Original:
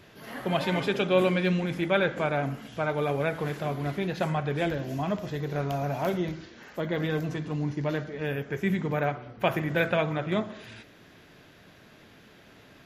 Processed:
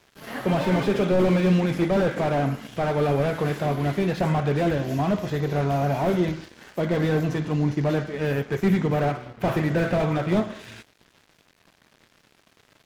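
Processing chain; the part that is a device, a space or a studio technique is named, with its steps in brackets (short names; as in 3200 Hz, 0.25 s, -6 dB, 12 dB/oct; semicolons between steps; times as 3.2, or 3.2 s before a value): early transistor amplifier (crossover distortion -50 dBFS; slew limiter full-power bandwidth 26 Hz); gain +7.5 dB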